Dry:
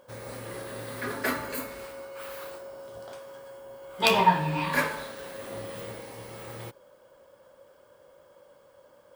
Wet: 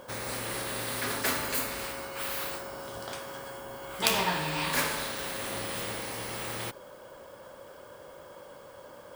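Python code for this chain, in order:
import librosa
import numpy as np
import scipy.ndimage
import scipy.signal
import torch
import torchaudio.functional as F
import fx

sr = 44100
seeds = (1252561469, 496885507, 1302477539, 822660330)

y = fx.spectral_comp(x, sr, ratio=2.0)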